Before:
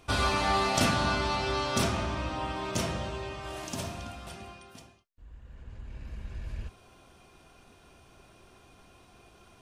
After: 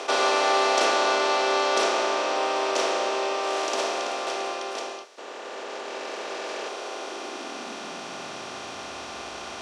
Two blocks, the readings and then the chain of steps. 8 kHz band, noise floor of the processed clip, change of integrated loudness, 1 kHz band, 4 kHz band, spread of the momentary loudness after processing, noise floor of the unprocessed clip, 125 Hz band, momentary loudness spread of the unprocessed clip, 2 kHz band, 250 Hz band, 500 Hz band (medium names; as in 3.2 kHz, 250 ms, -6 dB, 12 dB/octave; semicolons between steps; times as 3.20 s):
+5.5 dB, -38 dBFS, +4.0 dB, +7.5 dB, +6.5 dB, 15 LU, -58 dBFS, under -20 dB, 20 LU, +6.5 dB, -0.5 dB, +10.5 dB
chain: spectral levelling over time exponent 0.4; three-band isolator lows -23 dB, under 310 Hz, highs -24 dB, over 7.6 kHz; high-pass sweep 420 Hz -> 62 Hz, 6.92–9.21 s; trim +1 dB